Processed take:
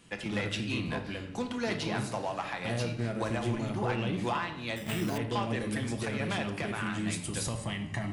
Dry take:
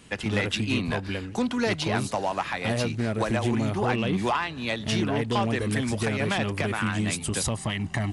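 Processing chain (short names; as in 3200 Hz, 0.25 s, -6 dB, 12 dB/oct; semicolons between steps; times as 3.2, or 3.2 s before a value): notches 50/100 Hz; reverb RT60 0.85 s, pre-delay 6 ms, DRR 5 dB; 4.76–5.18 careless resampling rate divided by 8×, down none, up hold; gain -7.5 dB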